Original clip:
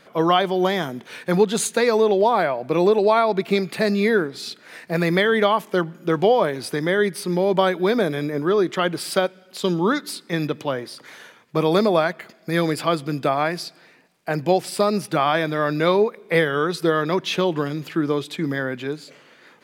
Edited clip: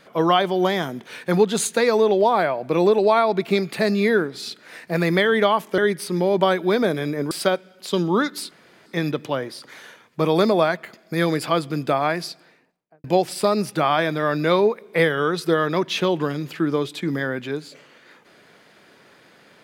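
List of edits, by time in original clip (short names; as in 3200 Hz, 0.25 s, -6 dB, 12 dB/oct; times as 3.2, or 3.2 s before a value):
5.78–6.94 cut
8.47–9.02 cut
10.22 insert room tone 0.35 s
13.62–14.4 studio fade out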